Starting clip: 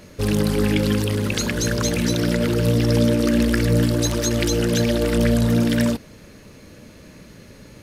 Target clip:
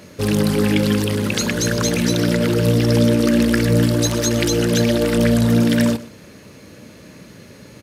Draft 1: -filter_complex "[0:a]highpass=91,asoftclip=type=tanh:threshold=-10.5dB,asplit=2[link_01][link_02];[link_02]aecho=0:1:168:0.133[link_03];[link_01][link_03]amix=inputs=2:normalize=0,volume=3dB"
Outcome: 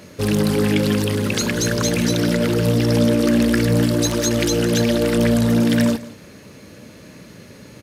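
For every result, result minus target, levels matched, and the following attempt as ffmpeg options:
soft clipping: distortion +17 dB; echo 47 ms late
-filter_complex "[0:a]highpass=91,asoftclip=type=tanh:threshold=-1dB,asplit=2[link_01][link_02];[link_02]aecho=0:1:168:0.133[link_03];[link_01][link_03]amix=inputs=2:normalize=0,volume=3dB"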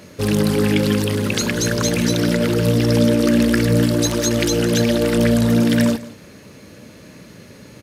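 echo 47 ms late
-filter_complex "[0:a]highpass=91,asoftclip=type=tanh:threshold=-1dB,asplit=2[link_01][link_02];[link_02]aecho=0:1:121:0.133[link_03];[link_01][link_03]amix=inputs=2:normalize=0,volume=3dB"

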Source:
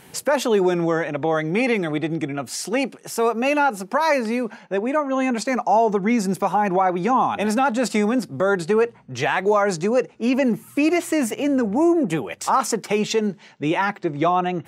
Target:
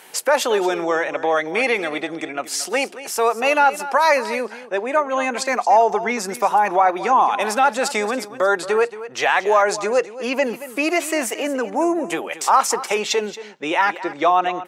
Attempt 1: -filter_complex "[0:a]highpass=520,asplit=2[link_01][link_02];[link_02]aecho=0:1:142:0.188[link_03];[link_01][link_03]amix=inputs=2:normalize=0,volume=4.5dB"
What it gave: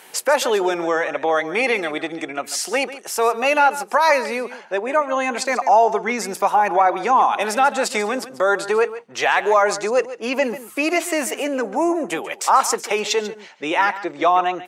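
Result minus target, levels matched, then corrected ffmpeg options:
echo 85 ms early
-filter_complex "[0:a]highpass=520,asplit=2[link_01][link_02];[link_02]aecho=0:1:227:0.188[link_03];[link_01][link_03]amix=inputs=2:normalize=0,volume=4.5dB"

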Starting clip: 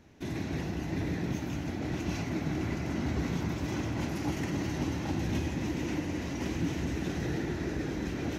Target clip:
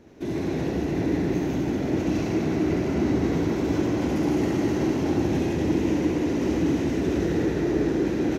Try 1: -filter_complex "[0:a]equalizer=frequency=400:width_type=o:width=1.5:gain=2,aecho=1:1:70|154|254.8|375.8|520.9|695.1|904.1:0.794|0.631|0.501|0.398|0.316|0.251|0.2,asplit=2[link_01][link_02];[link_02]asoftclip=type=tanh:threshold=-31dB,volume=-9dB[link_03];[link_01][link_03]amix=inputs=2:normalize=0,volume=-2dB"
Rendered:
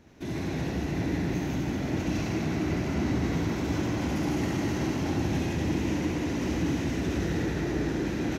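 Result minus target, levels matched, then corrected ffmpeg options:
500 Hz band −3.0 dB
-filter_complex "[0:a]equalizer=frequency=400:width_type=o:width=1.5:gain=11,aecho=1:1:70|154|254.8|375.8|520.9|695.1|904.1:0.794|0.631|0.501|0.398|0.316|0.251|0.2,asplit=2[link_01][link_02];[link_02]asoftclip=type=tanh:threshold=-31dB,volume=-9dB[link_03];[link_01][link_03]amix=inputs=2:normalize=0,volume=-2dB"

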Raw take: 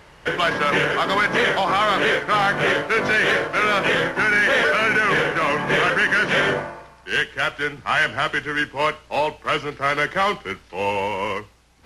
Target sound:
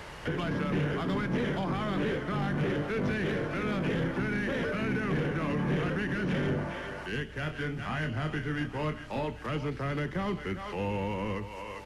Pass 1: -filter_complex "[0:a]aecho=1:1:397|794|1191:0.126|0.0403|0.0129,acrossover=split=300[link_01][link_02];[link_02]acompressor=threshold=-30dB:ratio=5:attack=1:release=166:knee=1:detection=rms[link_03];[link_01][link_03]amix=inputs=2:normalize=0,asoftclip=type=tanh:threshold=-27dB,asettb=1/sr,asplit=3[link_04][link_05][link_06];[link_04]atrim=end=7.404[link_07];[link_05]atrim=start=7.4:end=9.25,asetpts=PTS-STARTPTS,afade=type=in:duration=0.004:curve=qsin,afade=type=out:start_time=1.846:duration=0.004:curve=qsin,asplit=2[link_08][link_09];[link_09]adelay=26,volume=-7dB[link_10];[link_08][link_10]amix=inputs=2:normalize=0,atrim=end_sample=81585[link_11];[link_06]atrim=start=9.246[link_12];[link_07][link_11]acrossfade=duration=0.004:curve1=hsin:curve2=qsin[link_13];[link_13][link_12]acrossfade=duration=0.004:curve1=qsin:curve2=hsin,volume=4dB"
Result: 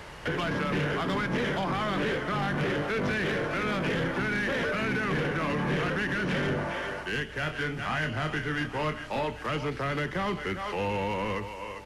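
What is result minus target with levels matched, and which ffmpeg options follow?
downward compressor: peak gain reduction −6.5 dB
-filter_complex "[0:a]aecho=1:1:397|794|1191:0.126|0.0403|0.0129,acrossover=split=300[link_01][link_02];[link_02]acompressor=threshold=-38dB:ratio=5:attack=1:release=166:knee=1:detection=rms[link_03];[link_01][link_03]amix=inputs=2:normalize=0,asoftclip=type=tanh:threshold=-27dB,asettb=1/sr,asplit=3[link_04][link_05][link_06];[link_04]atrim=end=7.404[link_07];[link_05]atrim=start=7.4:end=9.25,asetpts=PTS-STARTPTS,afade=type=in:duration=0.004:curve=qsin,afade=type=out:start_time=1.846:duration=0.004:curve=qsin,asplit=2[link_08][link_09];[link_09]adelay=26,volume=-7dB[link_10];[link_08][link_10]amix=inputs=2:normalize=0,atrim=end_sample=81585[link_11];[link_06]atrim=start=9.246[link_12];[link_07][link_11]acrossfade=duration=0.004:curve1=hsin:curve2=qsin[link_13];[link_13][link_12]acrossfade=duration=0.004:curve1=qsin:curve2=hsin,volume=4dB"

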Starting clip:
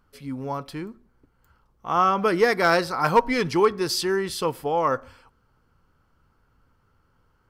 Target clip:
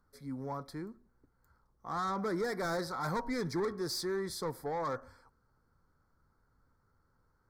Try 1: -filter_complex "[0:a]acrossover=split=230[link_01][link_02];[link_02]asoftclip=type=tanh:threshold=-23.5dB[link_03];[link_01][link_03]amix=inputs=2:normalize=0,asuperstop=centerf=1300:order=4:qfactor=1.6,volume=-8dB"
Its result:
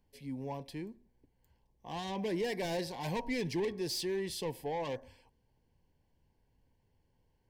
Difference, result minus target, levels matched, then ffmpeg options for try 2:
1,000 Hz band −4.0 dB
-filter_complex "[0:a]acrossover=split=230[link_01][link_02];[link_02]asoftclip=type=tanh:threshold=-23.5dB[link_03];[link_01][link_03]amix=inputs=2:normalize=0,asuperstop=centerf=2800:order=4:qfactor=1.6,volume=-8dB"

